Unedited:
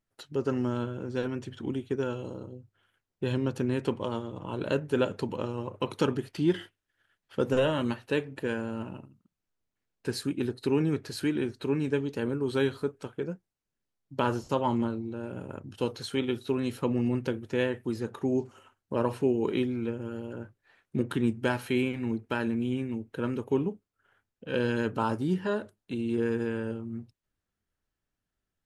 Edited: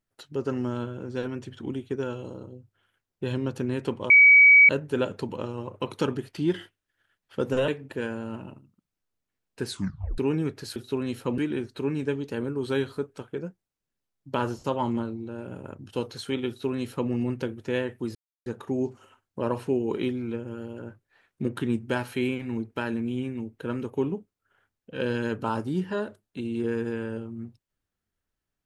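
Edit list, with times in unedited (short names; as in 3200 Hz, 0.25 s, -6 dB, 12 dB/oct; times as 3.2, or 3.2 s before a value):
4.1–4.69 bleep 2270 Hz -10.5 dBFS
7.68–8.15 cut
10.16 tape stop 0.49 s
16.33–16.95 copy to 11.23
18 insert silence 0.31 s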